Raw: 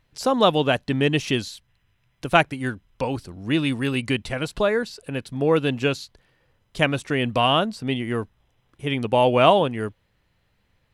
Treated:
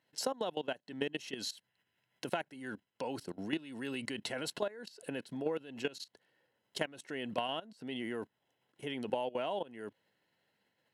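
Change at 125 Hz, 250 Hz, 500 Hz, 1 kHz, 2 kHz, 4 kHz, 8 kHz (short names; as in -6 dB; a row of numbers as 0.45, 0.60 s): -24.5, -16.5, -16.5, -18.5, -17.0, -15.0, -7.5 dB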